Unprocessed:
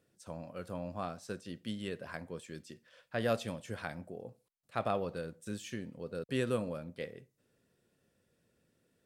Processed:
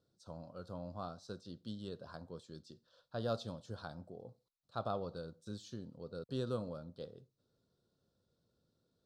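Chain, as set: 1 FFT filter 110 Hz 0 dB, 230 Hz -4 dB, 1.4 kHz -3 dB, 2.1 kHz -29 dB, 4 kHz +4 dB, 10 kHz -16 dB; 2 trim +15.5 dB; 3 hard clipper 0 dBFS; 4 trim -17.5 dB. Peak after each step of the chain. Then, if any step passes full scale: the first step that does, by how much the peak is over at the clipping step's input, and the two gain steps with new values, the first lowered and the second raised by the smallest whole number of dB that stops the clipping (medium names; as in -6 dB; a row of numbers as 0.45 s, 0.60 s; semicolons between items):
-21.0 dBFS, -5.5 dBFS, -5.5 dBFS, -23.0 dBFS; nothing clips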